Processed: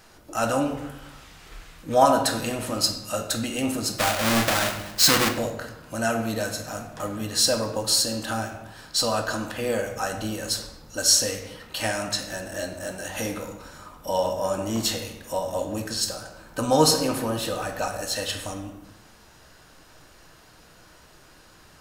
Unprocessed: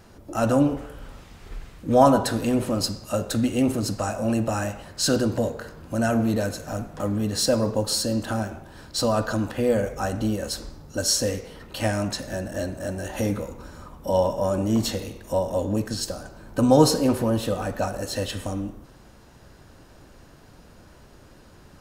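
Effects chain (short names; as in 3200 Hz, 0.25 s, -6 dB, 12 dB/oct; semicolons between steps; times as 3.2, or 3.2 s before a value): 3.98–5.29 half-waves squared off; tilt shelf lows -6.5 dB, about 680 Hz; reverb RT60 0.80 s, pre-delay 6 ms, DRR 5.5 dB; gain -2.5 dB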